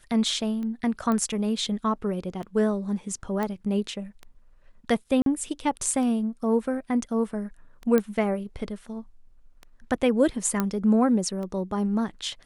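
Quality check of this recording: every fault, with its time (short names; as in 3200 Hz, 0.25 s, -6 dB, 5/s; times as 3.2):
tick 33 1/3 rpm -25 dBFS
1.12 pop -16 dBFS
3.43 pop -16 dBFS
5.22–5.26 gap 42 ms
7.98 pop -11 dBFS
10.6 pop -11 dBFS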